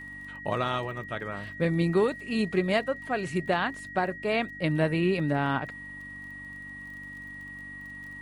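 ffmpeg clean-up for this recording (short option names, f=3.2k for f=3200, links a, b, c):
-af "adeclick=t=4,bandreject=f=48.6:t=h:w=4,bandreject=f=97.2:t=h:w=4,bandreject=f=145.8:t=h:w=4,bandreject=f=194.4:t=h:w=4,bandreject=f=243:t=h:w=4,bandreject=f=291.6:t=h:w=4,bandreject=f=1.9k:w=30"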